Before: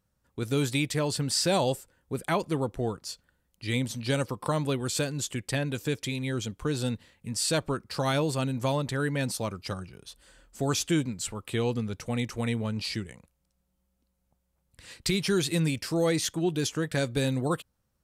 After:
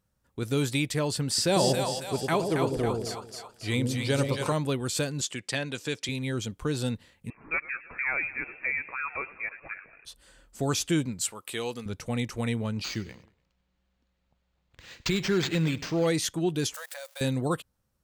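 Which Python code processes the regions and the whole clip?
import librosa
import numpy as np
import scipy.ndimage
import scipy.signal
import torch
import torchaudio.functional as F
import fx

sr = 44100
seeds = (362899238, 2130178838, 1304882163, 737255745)

y = fx.chain(x, sr, fx.peak_eq(hz=410.0, db=3.5, octaves=0.31),
    fx.echo_split(split_hz=650.0, low_ms=101, high_ms=274, feedback_pct=52, wet_db=-4.0), at=(1.28, 4.53))
y = fx.chain(y, sr, fx.bandpass_edges(low_hz=100.0, high_hz=6500.0),
    fx.tilt_eq(slope=2.0), at=(5.21, 6.09))
y = fx.chain(y, sr, fx.highpass(hz=470.0, slope=24),
    fx.freq_invert(carrier_hz=2900),
    fx.echo_warbled(ms=108, feedback_pct=68, rate_hz=2.8, cents=85, wet_db=-18.0), at=(7.3, 10.05))
y = fx.chain(y, sr, fx.highpass(hz=600.0, slope=6),
    fx.high_shelf(hz=6500.0, db=8.0), at=(11.21, 11.86))
y = fx.chain(y, sr, fx.high_shelf(hz=6200.0, db=5.0),
    fx.echo_feedback(ms=97, feedback_pct=43, wet_db=-18.5),
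    fx.resample_linear(factor=4), at=(12.84, 16.07))
y = fx.chain(y, sr, fx.crossing_spikes(level_db=-30.0),
    fx.brickwall_highpass(low_hz=500.0),
    fx.level_steps(step_db=20), at=(16.74, 17.21))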